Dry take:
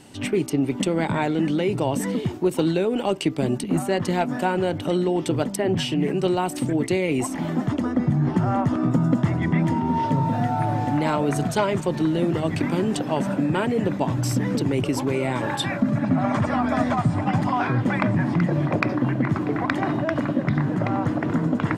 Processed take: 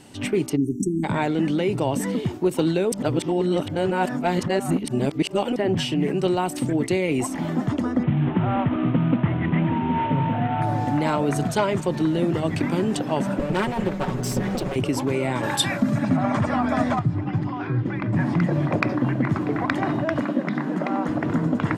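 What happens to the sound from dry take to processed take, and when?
0.56–1.04 spectral delete 410–5600 Hz
2.92–5.56 reverse
8.03–10.62 CVSD 16 kbps
13.39–14.76 minimum comb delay 5.4 ms
15.43–16.17 high shelf 4000 Hz +11 dB
16.99–18.13 EQ curve 150 Hz 0 dB, 230 Hz -10 dB, 330 Hz +2 dB, 610 Hz -12 dB, 1500 Hz -8 dB, 2800 Hz -8 dB, 5300 Hz -11 dB, 12000 Hz -27 dB
20.23–21.09 brick-wall FIR high-pass 160 Hz

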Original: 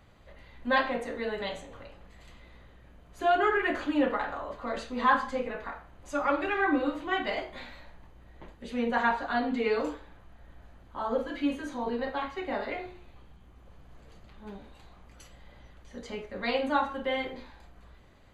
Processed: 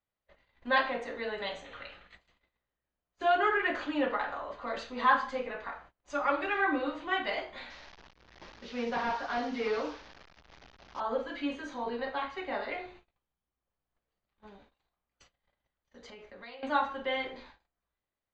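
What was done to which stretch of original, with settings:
1.66–2.15 spectral gain 1200–4400 Hz +9 dB
7.7–11 delta modulation 32 kbps, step -42.5 dBFS
14.46–16.63 compressor, threshold -43 dBFS
whole clip: LPF 6200 Hz 24 dB/oct; low shelf 330 Hz -10 dB; gate -53 dBFS, range -29 dB

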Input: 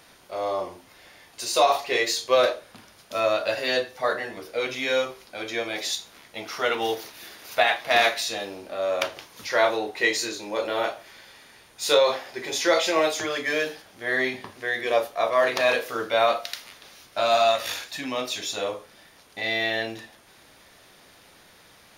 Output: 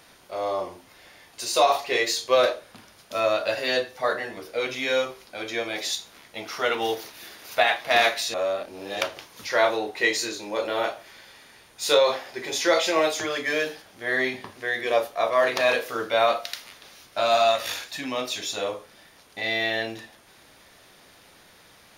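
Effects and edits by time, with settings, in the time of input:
8.34–9.01 reverse

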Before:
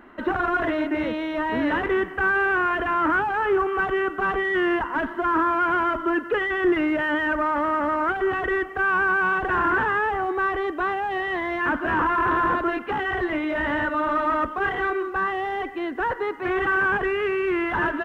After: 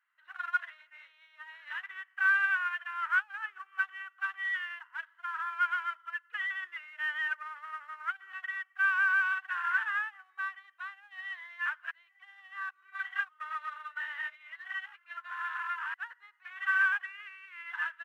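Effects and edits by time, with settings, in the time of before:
11.91–15.94 reverse
whole clip: HPF 1400 Hz 24 dB/oct; upward expander 2.5:1, over -39 dBFS

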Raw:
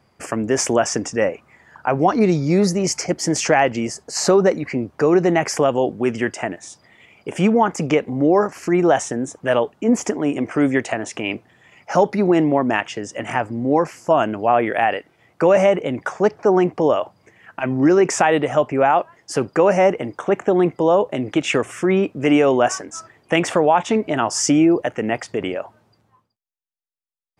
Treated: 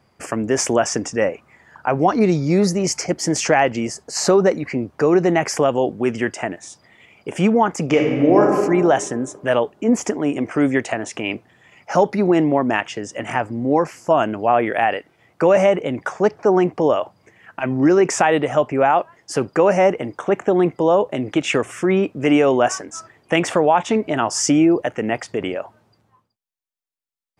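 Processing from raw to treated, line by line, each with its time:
7.84–8.43 reverb throw, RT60 1.8 s, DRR 0 dB

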